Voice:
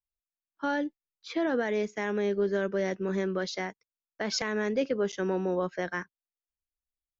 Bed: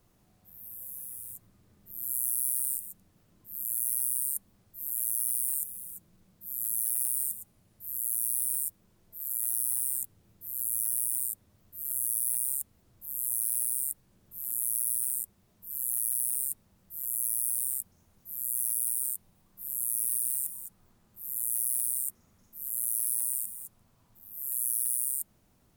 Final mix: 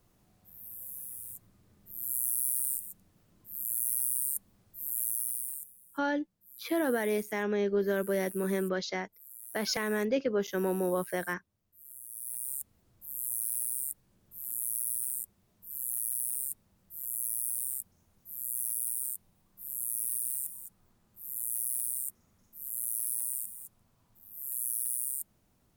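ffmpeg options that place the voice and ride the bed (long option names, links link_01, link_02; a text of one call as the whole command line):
ffmpeg -i stem1.wav -i stem2.wav -filter_complex "[0:a]adelay=5350,volume=-1dB[link_01];[1:a]volume=12dB,afade=type=out:start_time=5:duration=0.76:silence=0.16788,afade=type=in:start_time=12.08:duration=0.61:silence=0.223872[link_02];[link_01][link_02]amix=inputs=2:normalize=0" out.wav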